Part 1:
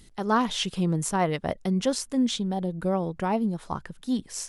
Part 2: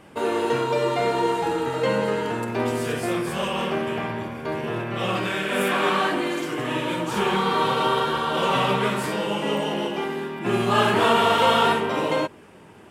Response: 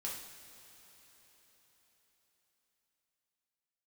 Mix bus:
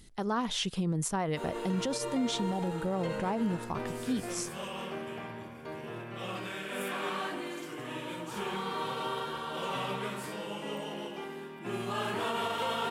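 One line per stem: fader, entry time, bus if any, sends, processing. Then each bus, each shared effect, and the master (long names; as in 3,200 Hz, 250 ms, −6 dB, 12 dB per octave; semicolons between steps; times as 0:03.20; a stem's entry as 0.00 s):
−2.5 dB, 0.00 s, no send, no processing
−13.5 dB, 1.20 s, no send, high-shelf EQ 5,500 Hz +5 dB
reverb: not used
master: brickwall limiter −23 dBFS, peak gain reduction 8 dB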